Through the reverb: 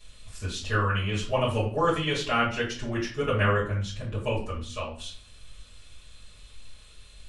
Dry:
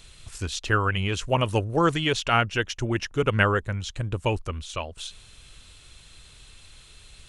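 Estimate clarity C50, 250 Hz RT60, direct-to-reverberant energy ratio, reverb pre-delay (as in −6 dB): 6.5 dB, 0.70 s, −10.5 dB, 5 ms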